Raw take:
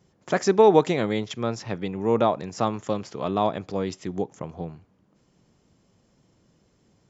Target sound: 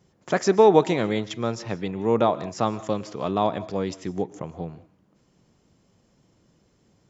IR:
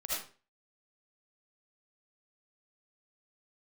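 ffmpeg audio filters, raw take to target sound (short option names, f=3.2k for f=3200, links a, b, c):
-filter_complex "[0:a]asplit=2[a][b];[1:a]atrim=start_sample=2205,atrim=end_sample=4410,asetrate=22050,aresample=44100[c];[b][c]afir=irnorm=-1:irlink=0,volume=-24dB[d];[a][d]amix=inputs=2:normalize=0"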